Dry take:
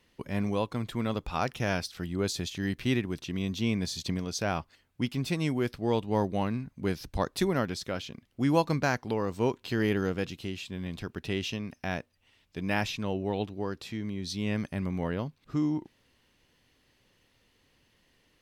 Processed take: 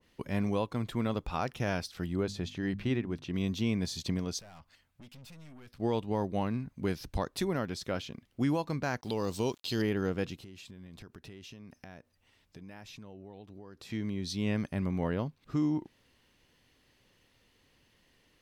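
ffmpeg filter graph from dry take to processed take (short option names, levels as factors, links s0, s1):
-filter_complex "[0:a]asettb=1/sr,asplit=3[s0][s1][s2];[s0]atrim=end=2.234[s3];[s1]atrim=start=2.23:end=3.34,asetpts=PTS-STARTPTS,afade=t=in:d=0.004:c=qsin,afade=t=out:st=1.106:d=0.004:c=qsin,lowpass=f=2800:p=1,bandreject=f=50:t=h:w=6,bandreject=f=100:t=h:w=6,bandreject=f=150:t=h:w=6,bandreject=f=200:t=h:w=6,bandreject=f=250:t=h:w=6[s4];[s2]atrim=start=3.336[s5];[s3][s4]acrossfade=d=0.004:c1=hsin:c2=qsin[s6];[s6][s5]acrossfade=d=0.004:c1=qsin:c2=hsin,asettb=1/sr,asplit=3[s7][s8][s9];[s7]atrim=end=4.394[s10];[s8]atrim=start=4.39:end=5.8,asetpts=PTS-STARTPTS,afade=t=in:d=0.004:c=qsin,afade=t=out:st=1.406:d=0.004:c=qsin,equalizer=f=370:w=2.2:g=-9.5,acompressor=threshold=0.00398:ratio=2:attack=3.2:release=140:knee=1:detection=peak,aeval=exprs='(tanh(282*val(0)+0.4)-tanh(0.4))/282':c=same[s11];[s9]atrim=start=5.796[s12];[s10][s11]acrossfade=d=0.004:c1=hsin:c2=qsin[s13];[s13][s12]acrossfade=d=0.004:c1=qsin:c2=hsin,asettb=1/sr,asplit=3[s14][s15][s16];[s14]atrim=end=9.014[s17];[s15]atrim=start=9.01:end=9.82,asetpts=PTS-STARTPTS,afade=t=in:d=0.004:c=qsin,afade=t=out:st=0.806:d=0.004:c=qsin,highshelf=f=2700:t=q:w=1.5:g=11,aeval=exprs='val(0)*gte(abs(val(0)),0.00282)':c=same[s18];[s16]atrim=start=9.816[s19];[s17][s18]acrossfade=d=0.004:c1=hsin:c2=qsin[s20];[s20][s19]acrossfade=d=0.004:c1=qsin:c2=hsin,asettb=1/sr,asplit=3[s21][s22][s23];[s21]atrim=end=10.354[s24];[s22]atrim=start=10.35:end=13.9,asetpts=PTS-STARTPTS,afade=t=in:d=0.004:c=qsin,afade=t=out:st=3.546:d=0.004:c=qsin,equalizer=f=2900:w=1.4:g=-4.5,acompressor=threshold=0.00562:ratio=8:attack=3.2:release=140:knee=1:detection=peak[s25];[s23]atrim=start=13.896[s26];[s24][s25]acrossfade=d=0.004:c1=hsin:c2=qsin[s27];[s27][s26]acrossfade=d=0.004:c1=qsin:c2=hsin,alimiter=limit=0.1:level=0:latency=1:release=264,adynamicequalizer=threshold=0.00398:dfrequency=1500:dqfactor=0.7:tfrequency=1500:tqfactor=0.7:attack=5:release=100:ratio=0.375:range=1.5:mode=cutabove:tftype=highshelf"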